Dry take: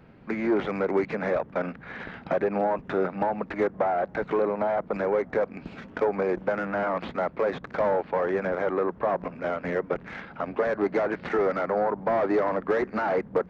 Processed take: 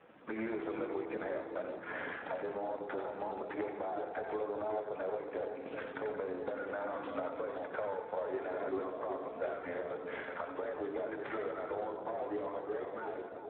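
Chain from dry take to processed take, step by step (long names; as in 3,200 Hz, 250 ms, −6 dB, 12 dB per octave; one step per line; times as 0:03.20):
fade-out on the ending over 3.19 s
dead-zone distortion −58 dBFS
high-pass filter 330 Hz 12 dB per octave
high-frequency loss of the air 160 metres
mains-hum notches 50/100/150/200/250/300/350/400/450 Hz
downward compressor 12 to 1, threshold −40 dBFS, peak gain reduction 19 dB
0:08.33–0:08.85: comb filter 2.9 ms, depth 78%
on a send: echo with a time of its own for lows and highs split 980 Hz, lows 376 ms, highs 89 ms, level −6 dB
on the sum: feedback delay network reverb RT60 2 s, low-frequency decay 1.2×, high-frequency decay 0.55×, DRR 5.5 dB
level +3.5 dB
Speex 8 kbit/s 8,000 Hz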